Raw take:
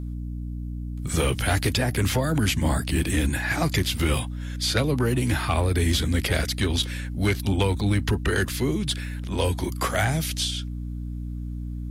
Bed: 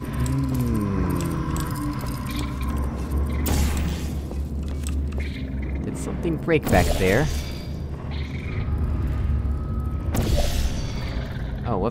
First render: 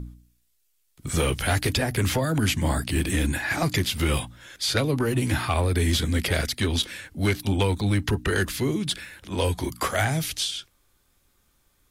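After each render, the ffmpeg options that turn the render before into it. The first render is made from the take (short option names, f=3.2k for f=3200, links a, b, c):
-af "bandreject=f=60:t=h:w=4,bandreject=f=120:t=h:w=4,bandreject=f=180:t=h:w=4,bandreject=f=240:t=h:w=4,bandreject=f=300:t=h:w=4"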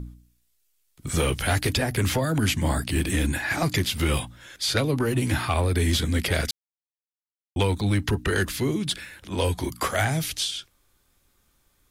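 -filter_complex "[0:a]asplit=3[a][b][c];[a]atrim=end=6.51,asetpts=PTS-STARTPTS,afade=t=out:st=6.506:d=0.004:c=hsin[d];[b]atrim=start=6.51:end=7.56,asetpts=PTS-STARTPTS,volume=0[e];[c]atrim=start=7.56,asetpts=PTS-STARTPTS,afade=t=in:d=0.004:c=hsin[f];[d][e][f]concat=n=3:v=0:a=1"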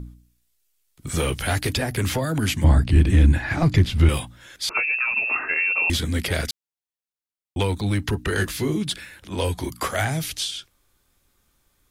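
-filter_complex "[0:a]asettb=1/sr,asplit=3[a][b][c];[a]atrim=end=2.644[d];[b]atrim=start=2.64:end=4.09,asetpts=PTS-STARTPTS,afade=t=in:d=0.004:c=qsin,afade=t=out:st=1.446:d=0.004:c=qsin,aemphasis=mode=reproduction:type=bsi[e];[c]atrim=start=4.086[f];[d][e]acrossfade=d=0.004:c1=hsin:c2=qsin[g];[g][f]acrossfade=d=0.004:c1=qsin:c2=hsin,asettb=1/sr,asplit=3[h][i][j];[h]atrim=end=4.694[k];[i]atrim=start=4.69:end=5.9,asetpts=PTS-STARTPTS,afade=t=in:d=0.004:c=qsin,afade=t=out:st=1.206:d=0.004:c=qsin,lowpass=f=2.4k:t=q:w=0.5098,lowpass=f=2.4k:t=q:w=0.6013,lowpass=f=2.4k:t=q:w=0.9,lowpass=f=2.4k:t=q:w=2.563,afreqshift=-2800[l];[j]atrim=start=5.896[m];[k][l]acrossfade=d=0.004:c1=hsin:c2=qsin[n];[n][m]acrossfade=d=0.004:c1=qsin:c2=hsin,asettb=1/sr,asplit=3[o][p][q];[o]atrim=end=8.364[r];[p]atrim=start=8.36:end=8.83,asetpts=PTS-STARTPTS,afade=t=in:d=0.004:c=qsin,afade=t=out:st=0.466:d=0.004:c=qsin,asplit=2[s][t];[t]adelay=19,volume=-6dB[u];[s][u]amix=inputs=2:normalize=0,atrim=end_sample=20727[v];[q]atrim=start=8.826[w];[r][v]acrossfade=d=0.004:c1=hsin:c2=qsin[x];[x][w]acrossfade=d=0.004:c1=qsin:c2=hsin"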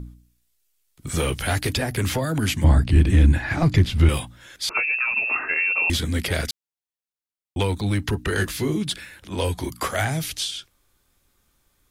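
-af anull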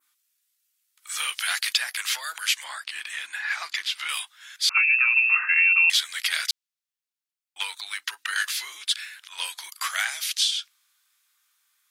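-af "highpass=f=1.2k:w=0.5412,highpass=f=1.2k:w=1.3066,adynamicequalizer=threshold=0.0158:dfrequency=4300:dqfactor=0.71:tfrequency=4300:tqfactor=0.71:attack=5:release=100:ratio=0.375:range=3:mode=boostabove:tftype=bell"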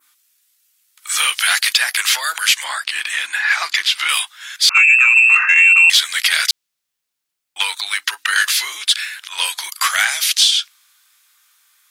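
-filter_complex "[0:a]asplit=2[a][b];[b]alimiter=limit=-16.5dB:level=0:latency=1:release=56,volume=1dB[c];[a][c]amix=inputs=2:normalize=0,acontrast=47"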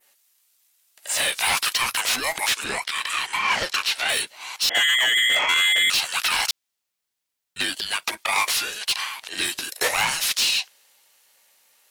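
-filter_complex "[0:a]acrossover=split=350|1100[a][b][c];[c]asoftclip=type=tanh:threshold=-14.5dB[d];[a][b][d]amix=inputs=3:normalize=0,aeval=exprs='val(0)*sin(2*PI*640*n/s)':c=same"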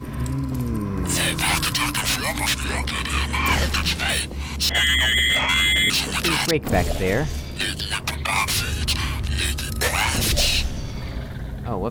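-filter_complex "[1:a]volume=-2dB[a];[0:a][a]amix=inputs=2:normalize=0"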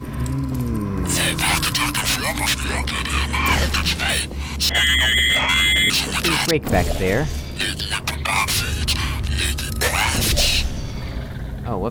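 -af "volume=2dB"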